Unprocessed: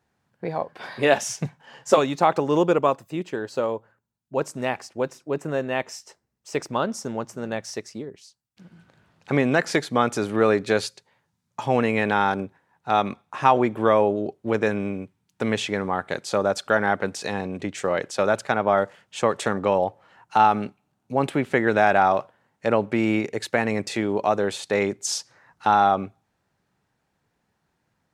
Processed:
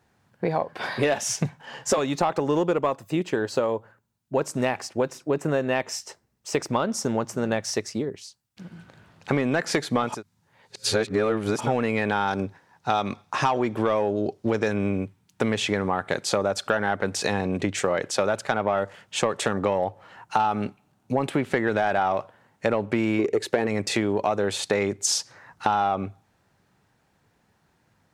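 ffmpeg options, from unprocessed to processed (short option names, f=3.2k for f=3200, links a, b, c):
-filter_complex "[0:a]asettb=1/sr,asplit=3[a][b][c];[a]atrim=end=12.274[d];[b]atrim=start=12.27:end=14.73,asetpts=PTS-STARTPTS,afade=t=in:d=0.004:c=qsin,afade=t=out:st=2.456:d=0.004:c=qsin,equalizer=f=5.2k:w=1.5:g=8.5[e];[c]atrim=start=14.726[f];[d][e]acrossfade=d=0.004:c1=hsin:c2=qsin[g];[g][f]acrossfade=d=0.004:c1=qsin:c2=hsin,asettb=1/sr,asplit=3[h][i][j];[h]atrim=end=23.194[k];[i]atrim=start=23.19:end=23.67,asetpts=PTS-STARTPTS,afade=t=in:d=0.004:c=qsin,afade=t=out:st=0.476:d=0.004:c=qsin,equalizer=f=400:t=o:w=0.92:g=12.5[l];[j]atrim=start=23.666[m];[k][l]acrossfade=d=0.004:c1=hsin:c2=qsin[n];[n][m]acrossfade=d=0.004:c1=qsin:c2=hsin,asplit=3[o][p][q];[o]atrim=end=10.23,asetpts=PTS-STARTPTS[r];[p]atrim=start=9.99:end=11.74,asetpts=PTS-STARTPTS,areverse[s];[q]atrim=start=11.5,asetpts=PTS-STARTPTS[t];[r][s]acrossfade=d=0.24:c1=tri:c2=tri[u];[u][t]acrossfade=d=0.24:c1=tri:c2=tri,acontrast=71,equalizer=f=100:w=7.3:g=4.5,acompressor=threshold=-20dB:ratio=6"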